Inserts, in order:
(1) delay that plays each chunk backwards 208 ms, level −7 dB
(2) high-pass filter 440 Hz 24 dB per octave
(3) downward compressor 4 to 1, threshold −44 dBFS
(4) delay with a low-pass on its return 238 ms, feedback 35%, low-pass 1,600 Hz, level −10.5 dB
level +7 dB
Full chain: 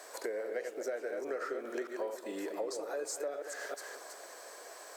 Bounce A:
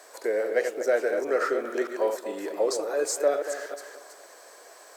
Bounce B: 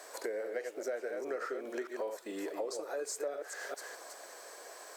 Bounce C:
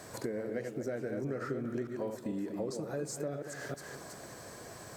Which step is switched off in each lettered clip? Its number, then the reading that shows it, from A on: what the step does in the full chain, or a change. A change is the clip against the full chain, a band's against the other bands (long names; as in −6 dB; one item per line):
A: 3, average gain reduction 6.5 dB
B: 4, echo-to-direct ratio −12.5 dB to none audible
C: 2, 250 Hz band +9.5 dB